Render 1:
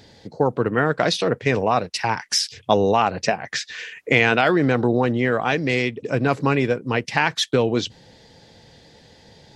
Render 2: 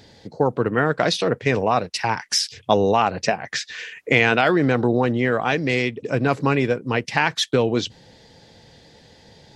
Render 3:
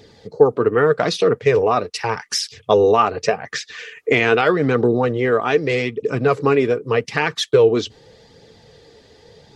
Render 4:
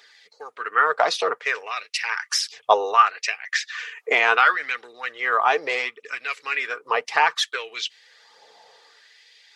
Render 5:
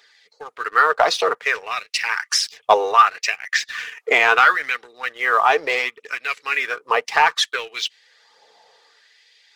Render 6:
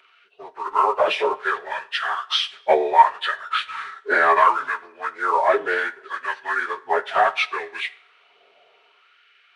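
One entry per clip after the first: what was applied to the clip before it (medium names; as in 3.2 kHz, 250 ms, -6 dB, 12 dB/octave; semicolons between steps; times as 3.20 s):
no audible change
flange 0.83 Hz, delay 0.3 ms, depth 3 ms, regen -43%; small resonant body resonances 440/1200 Hz, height 11 dB, ringing for 40 ms; trim +3 dB
LFO high-pass sine 0.67 Hz 790–2300 Hz; trim -1.5 dB
waveshaping leveller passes 1
frequency axis rescaled in octaves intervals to 84%; two-slope reverb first 0.43 s, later 1.7 s, from -18 dB, DRR 13.5 dB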